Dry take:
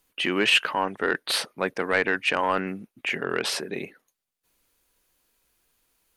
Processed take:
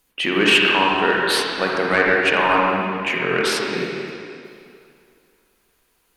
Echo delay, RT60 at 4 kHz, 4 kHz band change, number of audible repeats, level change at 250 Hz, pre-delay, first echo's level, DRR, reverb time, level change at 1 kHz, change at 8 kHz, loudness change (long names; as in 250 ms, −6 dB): no echo audible, 2.2 s, +6.0 dB, no echo audible, +8.0 dB, 36 ms, no echo audible, −2.5 dB, 2.5 s, +8.5 dB, +3.5 dB, +7.0 dB